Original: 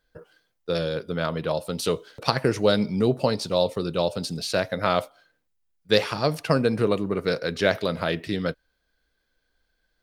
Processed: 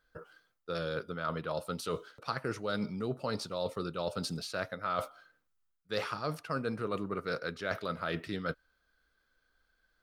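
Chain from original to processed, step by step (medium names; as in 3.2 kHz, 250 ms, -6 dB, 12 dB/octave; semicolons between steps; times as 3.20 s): peaking EQ 1.3 kHz +11 dB 0.5 oct; reverse; compression 5:1, threshold -28 dBFS, peak gain reduction 15 dB; reverse; trim -4 dB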